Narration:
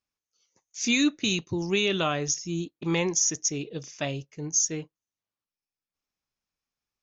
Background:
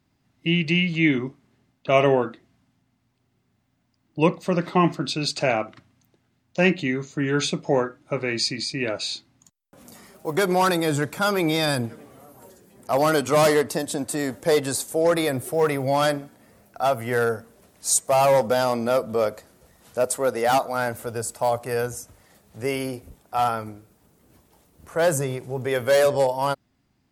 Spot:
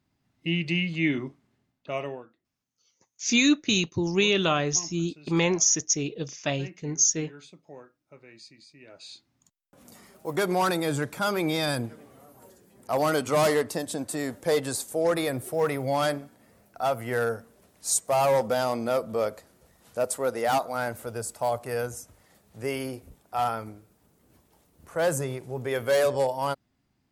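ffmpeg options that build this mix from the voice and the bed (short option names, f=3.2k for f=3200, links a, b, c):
-filter_complex "[0:a]adelay=2450,volume=2.5dB[a];[1:a]volume=15dB,afade=t=out:st=1.34:d=0.92:silence=0.105925,afade=t=in:st=8.87:d=1.05:silence=0.0944061[b];[a][b]amix=inputs=2:normalize=0"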